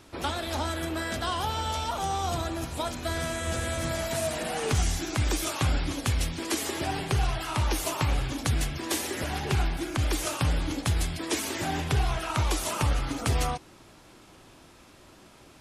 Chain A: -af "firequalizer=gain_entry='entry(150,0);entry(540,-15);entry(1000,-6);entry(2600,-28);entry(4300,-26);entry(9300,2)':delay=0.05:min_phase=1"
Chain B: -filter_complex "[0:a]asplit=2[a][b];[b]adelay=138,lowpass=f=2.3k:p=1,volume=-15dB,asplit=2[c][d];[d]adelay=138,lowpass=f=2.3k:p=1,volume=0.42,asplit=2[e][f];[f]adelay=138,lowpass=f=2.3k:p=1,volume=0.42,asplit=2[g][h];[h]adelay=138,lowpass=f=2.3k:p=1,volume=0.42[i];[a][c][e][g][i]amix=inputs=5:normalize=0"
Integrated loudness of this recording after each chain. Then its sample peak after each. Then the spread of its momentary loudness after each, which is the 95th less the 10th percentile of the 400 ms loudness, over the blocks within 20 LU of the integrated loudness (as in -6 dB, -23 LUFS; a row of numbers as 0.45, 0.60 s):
-32.5, -29.0 LUFS; -16.5, -15.5 dBFS; 7, 4 LU